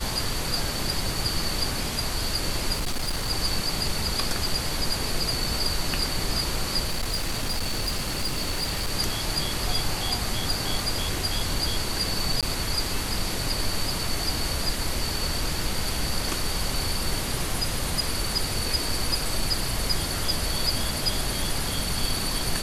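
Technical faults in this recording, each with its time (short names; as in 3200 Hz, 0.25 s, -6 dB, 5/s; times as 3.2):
2.73–3.29 clipped -23 dBFS
6.87–8.93 clipped -22.5 dBFS
12.41–12.43 gap 17 ms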